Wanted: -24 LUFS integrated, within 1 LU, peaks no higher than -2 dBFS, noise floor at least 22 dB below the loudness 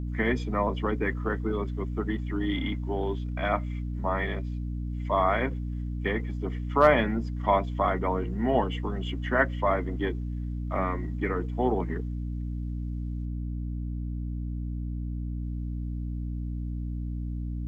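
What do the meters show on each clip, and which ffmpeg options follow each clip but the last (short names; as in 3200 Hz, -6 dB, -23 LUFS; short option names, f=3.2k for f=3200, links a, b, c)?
hum 60 Hz; harmonics up to 300 Hz; hum level -30 dBFS; loudness -29.5 LUFS; peak -7.5 dBFS; loudness target -24.0 LUFS
-> -af "bandreject=f=60:t=h:w=4,bandreject=f=120:t=h:w=4,bandreject=f=180:t=h:w=4,bandreject=f=240:t=h:w=4,bandreject=f=300:t=h:w=4"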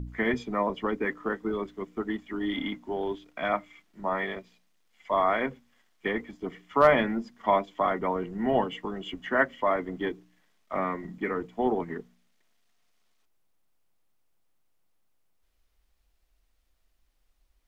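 hum none; loudness -29.0 LUFS; peak -8.5 dBFS; loudness target -24.0 LUFS
-> -af "volume=5dB"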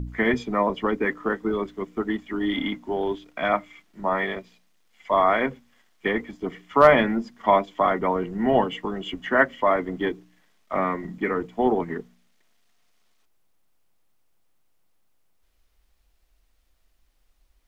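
loudness -24.0 LUFS; peak -3.5 dBFS; noise floor -66 dBFS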